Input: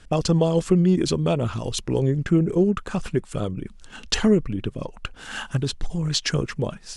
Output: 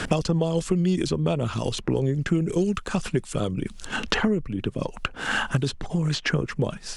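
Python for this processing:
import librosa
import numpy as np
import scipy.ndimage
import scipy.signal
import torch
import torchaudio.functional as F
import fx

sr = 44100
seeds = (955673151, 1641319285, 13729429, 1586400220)

y = fx.band_squash(x, sr, depth_pct=100)
y = F.gain(torch.from_numpy(y), -3.0).numpy()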